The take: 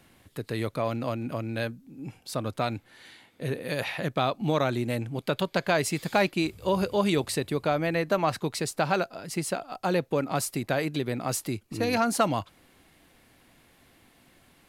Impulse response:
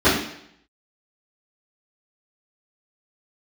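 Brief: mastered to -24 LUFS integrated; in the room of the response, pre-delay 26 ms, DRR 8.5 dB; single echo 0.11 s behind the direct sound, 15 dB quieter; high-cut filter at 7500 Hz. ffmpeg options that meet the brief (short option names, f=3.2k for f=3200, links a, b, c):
-filter_complex "[0:a]lowpass=7.5k,aecho=1:1:110:0.178,asplit=2[a][b];[1:a]atrim=start_sample=2205,adelay=26[c];[b][c]afir=irnorm=-1:irlink=0,volume=-32dB[d];[a][d]amix=inputs=2:normalize=0,volume=3.5dB"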